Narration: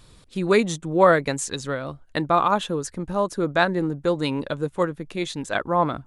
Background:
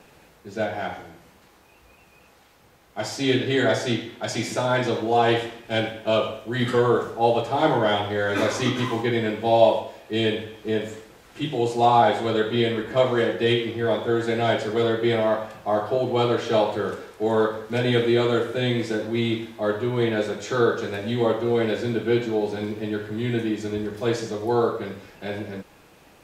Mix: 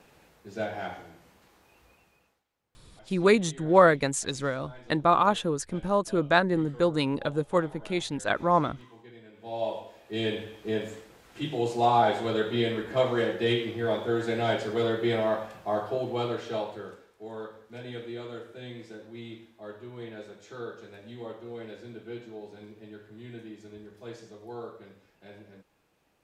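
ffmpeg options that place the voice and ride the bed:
ffmpeg -i stem1.wav -i stem2.wav -filter_complex "[0:a]adelay=2750,volume=-2dB[link_01];[1:a]volume=16dB,afade=type=out:start_time=1.83:duration=0.6:silence=0.0891251,afade=type=in:start_time=9.32:duration=1.16:silence=0.0794328,afade=type=out:start_time=15.56:duration=1.52:silence=0.211349[link_02];[link_01][link_02]amix=inputs=2:normalize=0" out.wav

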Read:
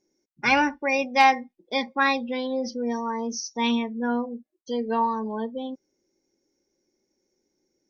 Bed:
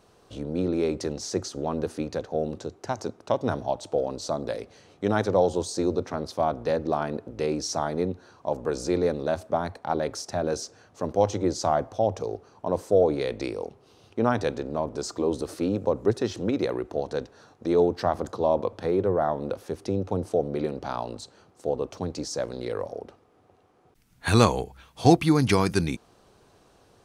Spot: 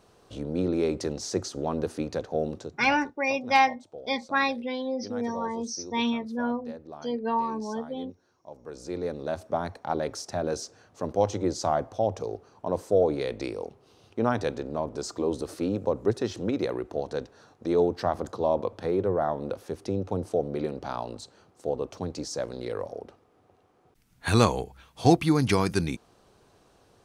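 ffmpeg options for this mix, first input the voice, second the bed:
ffmpeg -i stem1.wav -i stem2.wav -filter_complex "[0:a]adelay=2350,volume=-3dB[link_01];[1:a]volume=14.5dB,afade=type=out:start_time=2.47:duration=0.5:silence=0.149624,afade=type=in:start_time=8.58:duration=1.05:silence=0.177828[link_02];[link_01][link_02]amix=inputs=2:normalize=0" out.wav

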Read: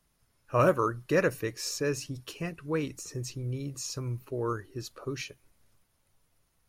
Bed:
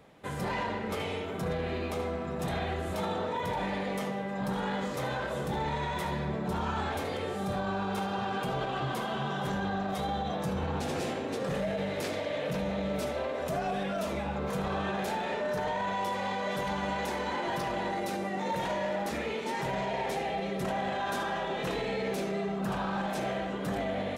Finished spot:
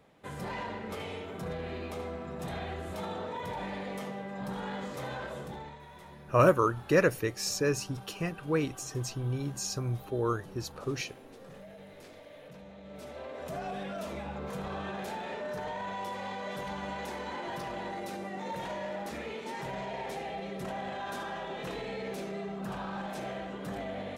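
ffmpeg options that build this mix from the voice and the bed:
ffmpeg -i stem1.wav -i stem2.wav -filter_complex "[0:a]adelay=5800,volume=1.5dB[link_01];[1:a]volume=7dB,afade=type=out:start_time=5.25:duration=0.53:silence=0.237137,afade=type=in:start_time=12.82:duration=0.79:silence=0.251189[link_02];[link_01][link_02]amix=inputs=2:normalize=0" out.wav

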